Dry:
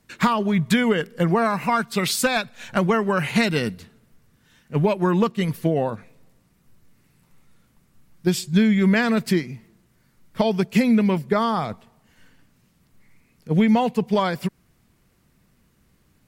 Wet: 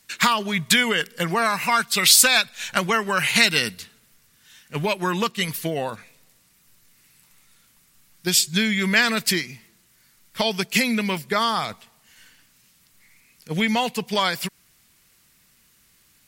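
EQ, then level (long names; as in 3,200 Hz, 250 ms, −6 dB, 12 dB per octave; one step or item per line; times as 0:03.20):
tilt shelving filter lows −10 dB, about 1,300 Hz
+2.5 dB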